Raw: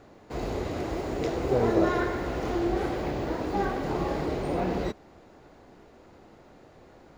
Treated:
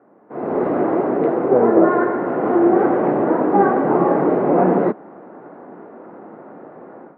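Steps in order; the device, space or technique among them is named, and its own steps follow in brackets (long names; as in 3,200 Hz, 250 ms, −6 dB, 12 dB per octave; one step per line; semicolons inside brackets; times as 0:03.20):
high-pass filter 180 Hz 24 dB per octave
action camera in a waterproof case (low-pass filter 1,500 Hz 24 dB per octave; automatic gain control gain up to 15.5 dB; AAC 64 kbit/s 48,000 Hz)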